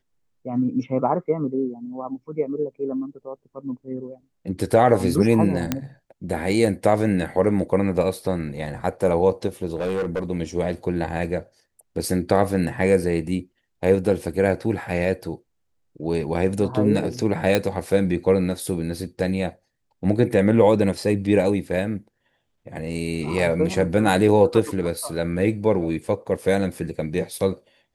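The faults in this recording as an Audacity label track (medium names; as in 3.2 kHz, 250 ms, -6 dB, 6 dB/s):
5.720000	5.720000	pop -7 dBFS
9.750000	10.230000	clipped -20.5 dBFS
17.550000	17.550000	pop -5 dBFS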